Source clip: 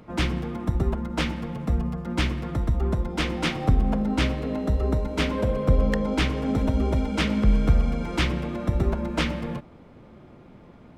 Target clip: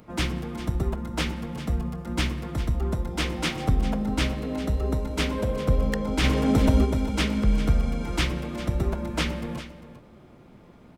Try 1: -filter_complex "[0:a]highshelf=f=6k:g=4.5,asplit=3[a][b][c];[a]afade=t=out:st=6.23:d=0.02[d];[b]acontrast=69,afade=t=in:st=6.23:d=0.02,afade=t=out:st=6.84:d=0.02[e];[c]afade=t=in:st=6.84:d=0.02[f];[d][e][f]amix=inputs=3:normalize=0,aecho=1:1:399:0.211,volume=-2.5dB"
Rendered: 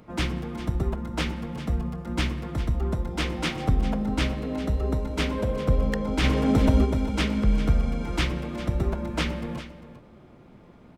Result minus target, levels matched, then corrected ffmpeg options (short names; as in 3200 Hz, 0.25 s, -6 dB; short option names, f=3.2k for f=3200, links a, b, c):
8000 Hz band -3.5 dB
-filter_complex "[0:a]highshelf=f=6k:g=11,asplit=3[a][b][c];[a]afade=t=out:st=6.23:d=0.02[d];[b]acontrast=69,afade=t=in:st=6.23:d=0.02,afade=t=out:st=6.84:d=0.02[e];[c]afade=t=in:st=6.84:d=0.02[f];[d][e][f]amix=inputs=3:normalize=0,aecho=1:1:399:0.211,volume=-2.5dB"